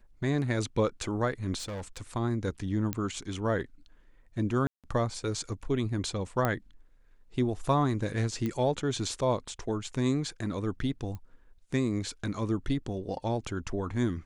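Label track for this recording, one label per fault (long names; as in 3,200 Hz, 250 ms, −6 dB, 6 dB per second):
1.580000	2.020000	clipping −34 dBFS
2.930000	2.930000	click −15 dBFS
4.670000	4.840000	drop-out 167 ms
6.450000	6.450000	click −14 dBFS
8.460000	8.460000	click −20 dBFS
11.150000	11.150000	click −28 dBFS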